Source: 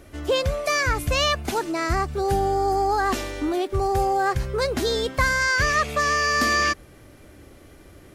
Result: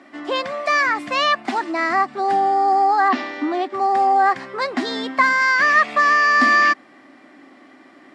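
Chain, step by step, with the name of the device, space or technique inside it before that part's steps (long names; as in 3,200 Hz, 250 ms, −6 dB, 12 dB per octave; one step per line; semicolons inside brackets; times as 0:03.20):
0:03.08–0:03.86: low-pass filter 5,100 Hz → 10,000 Hz 24 dB per octave
television speaker (loudspeaker in its box 230–6,900 Hz, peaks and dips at 260 Hz +10 dB, 460 Hz −9 dB, 750 Hz +8 dB, 1,100 Hz +8 dB, 1,900 Hz +10 dB, 6,300 Hz −9 dB)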